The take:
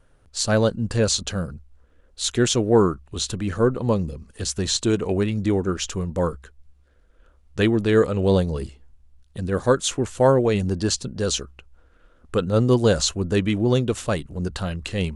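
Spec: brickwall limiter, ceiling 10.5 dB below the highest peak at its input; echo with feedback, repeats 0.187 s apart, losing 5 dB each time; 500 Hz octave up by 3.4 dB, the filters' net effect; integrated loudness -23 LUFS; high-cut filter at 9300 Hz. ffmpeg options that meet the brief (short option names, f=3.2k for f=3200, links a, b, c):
-af "lowpass=9.3k,equalizer=f=500:t=o:g=4,alimiter=limit=-13dB:level=0:latency=1,aecho=1:1:187|374|561|748|935|1122|1309:0.562|0.315|0.176|0.0988|0.0553|0.031|0.0173,volume=-0.5dB"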